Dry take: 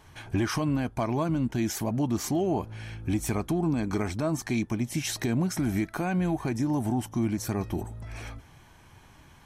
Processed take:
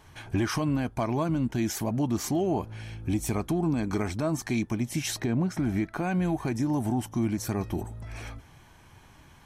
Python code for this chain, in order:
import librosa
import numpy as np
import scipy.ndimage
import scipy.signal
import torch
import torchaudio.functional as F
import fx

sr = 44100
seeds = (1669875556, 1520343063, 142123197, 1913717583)

y = fx.dynamic_eq(x, sr, hz=1500.0, q=1.4, threshold_db=-53.0, ratio=4.0, max_db=-5, at=(2.8, 3.34))
y = fx.lowpass(y, sr, hz=fx.line((5.18, 2000.0), (6.03, 3400.0)), slope=6, at=(5.18, 6.03), fade=0.02)